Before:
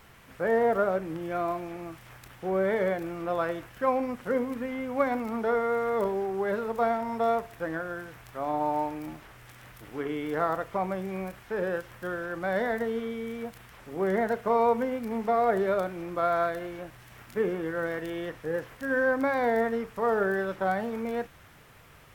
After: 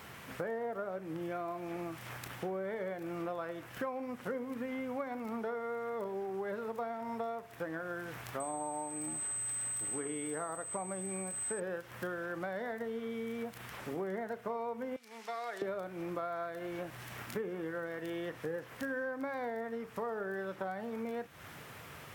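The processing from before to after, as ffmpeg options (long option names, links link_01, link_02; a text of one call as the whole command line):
ffmpeg -i in.wav -filter_complex "[0:a]asettb=1/sr,asplit=3[link_01][link_02][link_03];[link_01]atrim=end=8.404[link_04];[link_02]atrim=start=8.4:end=11.6,asetpts=PTS-STARTPTS,afade=type=in:duration=0.004:curve=qsin,afade=type=out:start_time=3.196:duration=0.004:curve=qsin,aeval=exprs='val(0)+0.02*sin(2*PI*8200*n/s)':channel_layout=same[link_05];[link_03]atrim=start=11.596[link_06];[link_04][link_05]acrossfade=duration=0.004:curve1=hsin:curve2=qsin[link_07];[link_07][link_06]acrossfade=duration=0.004:curve1=qsin:curve2=hsin,asettb=1/sr,asplit=3[link_08][link_09][link_10];[link_08]atrim=end=14.964[link_11];[link_09]atrim=start=14.96:end=15.62,asetpts=PTS-STARTPTS,afade=type=in:duration=0.004:curve=qsin,afade=type=out:start_time=0.656:duration=0.004:curve=qsin,bandpass=frequency=5300:width_type=q:width=1[link_12];[link_10]atrim=start=15.616[link_13];[link_11][link_12]acrossfade=duration=0.004:curve1=hsin:curve2=qsin[link_14];[link_14][link_13]acrossfade=duration=0.004:curve1=qsin:curve2=hsin,acompressor=threshold=-41dB:ratio=8,highpass=100,volume=5dB" out.wav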